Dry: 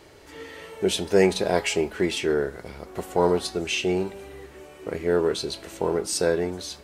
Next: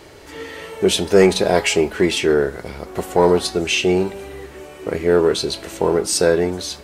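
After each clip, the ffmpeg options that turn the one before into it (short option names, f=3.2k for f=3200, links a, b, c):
-af "acontrast=71,volume=1dB"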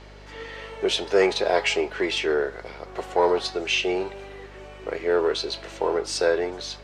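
-filter_complex "[0:a]acrossover=split=360 6100:gain=0.0708 1 0.0794[a][b][c];[a][b][c]amix=inputs=3:normalize=0,aeval=exprs='val(0)+0.00794*(sin(2*PI*50*n/s)+sin(2*PI*2*50*n/s)/2+sin(2*PI*3*50*n/s)/3+sin(2*PI*4*50*n/s)/4+sin(2*PI*5*50*n/s)/5)':c=same,volume=-3.5dB"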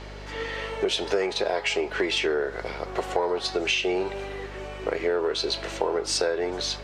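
-af "acompressor=threshold=-27dB:ratio=10,volume=5.5dB"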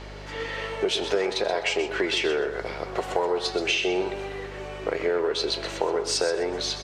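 -af "aecho=1:1:127|254|381:0.299|0.0746|0.0187"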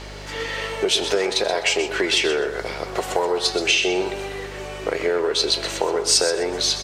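-af "crystalizer=i=2:c=0,volume=3.5dB" -ar 44100 -c:a libmp3lame -b:a 128k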